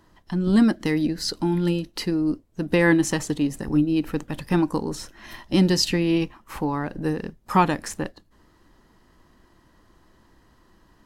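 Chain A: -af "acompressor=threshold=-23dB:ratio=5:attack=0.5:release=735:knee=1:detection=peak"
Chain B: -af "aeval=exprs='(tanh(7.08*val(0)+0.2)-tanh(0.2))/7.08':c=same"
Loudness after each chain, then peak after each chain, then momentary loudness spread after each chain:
-31.5, -26.5 LUFS; -18.5, -15.5 dBFS; 7, 10 LU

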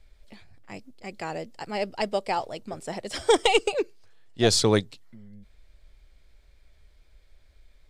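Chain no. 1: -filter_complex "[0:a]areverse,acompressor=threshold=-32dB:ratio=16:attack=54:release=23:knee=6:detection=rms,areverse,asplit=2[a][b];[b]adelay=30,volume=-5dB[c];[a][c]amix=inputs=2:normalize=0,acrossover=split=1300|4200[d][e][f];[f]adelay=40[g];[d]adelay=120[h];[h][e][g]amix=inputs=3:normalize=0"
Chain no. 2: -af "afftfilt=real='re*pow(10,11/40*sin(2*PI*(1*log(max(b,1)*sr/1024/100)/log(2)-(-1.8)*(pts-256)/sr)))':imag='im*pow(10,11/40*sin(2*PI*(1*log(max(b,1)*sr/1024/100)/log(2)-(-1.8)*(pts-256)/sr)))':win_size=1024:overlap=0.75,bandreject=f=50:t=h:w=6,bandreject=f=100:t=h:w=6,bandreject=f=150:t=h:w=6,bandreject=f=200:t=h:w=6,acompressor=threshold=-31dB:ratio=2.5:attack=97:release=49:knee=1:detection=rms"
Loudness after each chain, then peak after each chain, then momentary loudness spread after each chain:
-34.0, -30.0 LUFS; -15.5, -10.0 dBFS; 19, 18 LU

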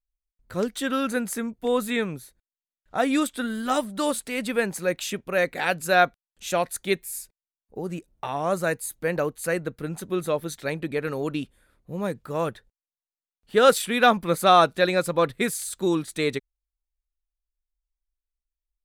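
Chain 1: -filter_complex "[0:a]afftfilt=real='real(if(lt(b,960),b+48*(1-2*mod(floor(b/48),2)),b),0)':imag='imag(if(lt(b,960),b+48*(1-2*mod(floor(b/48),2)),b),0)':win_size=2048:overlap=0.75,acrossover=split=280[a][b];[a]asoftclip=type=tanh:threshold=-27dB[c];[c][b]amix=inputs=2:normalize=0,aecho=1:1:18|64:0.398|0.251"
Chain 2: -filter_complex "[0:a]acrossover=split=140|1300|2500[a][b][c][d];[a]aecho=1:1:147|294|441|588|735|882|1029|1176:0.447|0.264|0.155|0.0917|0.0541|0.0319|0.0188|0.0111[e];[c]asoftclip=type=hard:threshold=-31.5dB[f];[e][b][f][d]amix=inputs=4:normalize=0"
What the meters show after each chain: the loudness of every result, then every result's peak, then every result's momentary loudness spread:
-23.5, -25.5 LUFS; -4.0, -5.5 dBFS; 14, 14 LU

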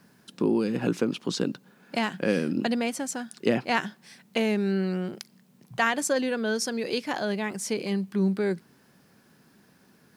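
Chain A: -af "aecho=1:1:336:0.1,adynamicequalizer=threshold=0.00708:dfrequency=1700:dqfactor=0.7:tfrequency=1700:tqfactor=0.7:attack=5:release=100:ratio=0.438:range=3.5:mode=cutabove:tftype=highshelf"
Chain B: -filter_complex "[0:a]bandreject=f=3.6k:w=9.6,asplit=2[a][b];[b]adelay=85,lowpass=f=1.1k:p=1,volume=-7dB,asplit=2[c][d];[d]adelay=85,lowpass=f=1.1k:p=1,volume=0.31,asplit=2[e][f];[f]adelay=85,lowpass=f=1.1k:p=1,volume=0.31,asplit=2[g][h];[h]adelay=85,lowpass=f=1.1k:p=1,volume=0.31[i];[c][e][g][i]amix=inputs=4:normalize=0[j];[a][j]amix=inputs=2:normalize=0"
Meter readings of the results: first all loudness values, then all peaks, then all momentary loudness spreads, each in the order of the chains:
-28.5, -27.5 LUFS; -9.5, -9.0 dBFS; 10, 9 LU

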